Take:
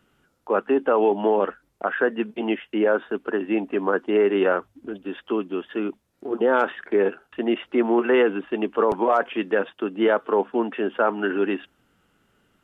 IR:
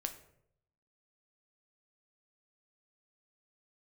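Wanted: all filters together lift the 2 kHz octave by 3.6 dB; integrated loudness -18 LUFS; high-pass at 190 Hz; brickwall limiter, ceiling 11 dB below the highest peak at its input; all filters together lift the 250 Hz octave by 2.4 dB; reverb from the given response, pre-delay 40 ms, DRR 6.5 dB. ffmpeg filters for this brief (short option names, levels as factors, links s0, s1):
-filter_complex "[0:a]highpass=190,equalizer=f=250:t=o:g=4.5,equalizer=f=2000:t=o:g=5,alimiter=limit=0.133:level=0:latency=1,asplit=2[s0][s1];[1:a]atrim=start_sample=2205,adelay=40[s2];[s1][s2]afir=irnorm=-1:irlink=0,volume=0.501[s3];[s0][s3]amix=inputs=2:normalize=0,volume=2.82"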